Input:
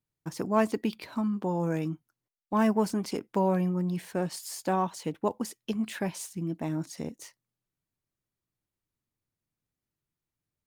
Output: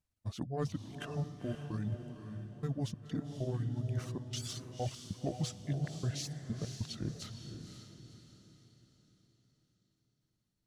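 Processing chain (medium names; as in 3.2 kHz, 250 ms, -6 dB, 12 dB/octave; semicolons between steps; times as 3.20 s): rotating-head pitch shifter -7 st; bass shelf 210 Hz +6 dB; reverse; compression 16:1, threshold -31 dBFS, peak gain reduction 14 dB; reverse; reverb removal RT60 0.66 s; trance gate "xxxxx.xx.x." 97 bpm -24 dB; echo that smears into a reverb 521 ms, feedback 43%, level -7 dB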